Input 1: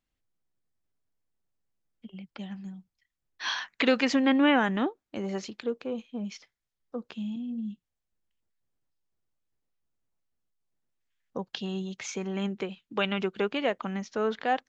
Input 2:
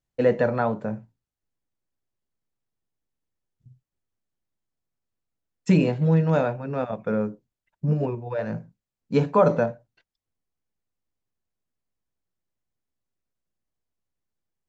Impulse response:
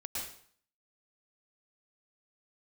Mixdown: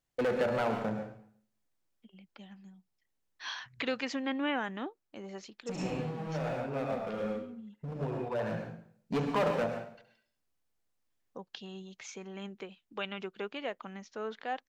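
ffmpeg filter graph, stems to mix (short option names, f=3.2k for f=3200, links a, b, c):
-filter_complex "[0:a]volume=-8.5dB,asplit=2[a][b];[1:a]acompressor=threshold=-29dB:ratio=2,volume=26.5dB,asoftclip=hard,volume=-26.5dB,volume=-0.5dB,asplit=3[c][d][e];[d]volume=-4dB[f];[e]volume=-10dB[g];[b]apad=whole_len=647748[h];[c][h]sidechaincompress=threshold=-53dB:ratio=8:attack=16:release=1220[i];[2:a]atrim=start_sample=2205[j];[f][j]afir=irnorm=-1:irlink=0[k];[g]aecho=0:1:71|142|213|284|355|426|497:1|0.5|0.25|0.125|0.0625|0.0312|0.0156[l];[a][i][k][l]amix=inputs=4:normalize=0,lowshelf=f=240:g=-7"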